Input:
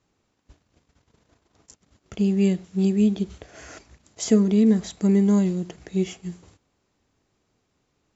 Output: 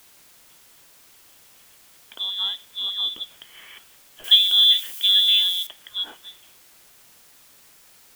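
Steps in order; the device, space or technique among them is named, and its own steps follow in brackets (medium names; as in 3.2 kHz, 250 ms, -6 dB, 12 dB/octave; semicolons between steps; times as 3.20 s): scrambled radio voice (band-pass 330–3200 Hz; frequency inversion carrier 3.7 kHz; white noise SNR 21 dB); 4.24–5.67 s: tilt EQ +4.5 dB/octave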